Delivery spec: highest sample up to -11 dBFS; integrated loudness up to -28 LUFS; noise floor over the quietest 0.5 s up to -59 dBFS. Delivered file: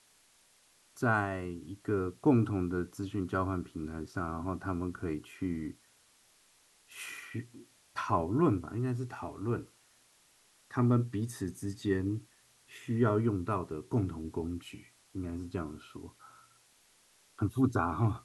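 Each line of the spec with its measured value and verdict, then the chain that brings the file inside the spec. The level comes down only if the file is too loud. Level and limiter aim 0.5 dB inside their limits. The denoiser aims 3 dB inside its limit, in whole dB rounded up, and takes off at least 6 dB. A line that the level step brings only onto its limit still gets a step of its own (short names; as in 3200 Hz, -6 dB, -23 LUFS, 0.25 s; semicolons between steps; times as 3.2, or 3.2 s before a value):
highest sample -15.0 dBFS: OK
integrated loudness -34.0 LUFS: OK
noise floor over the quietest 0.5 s -66 dBFS: OK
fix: none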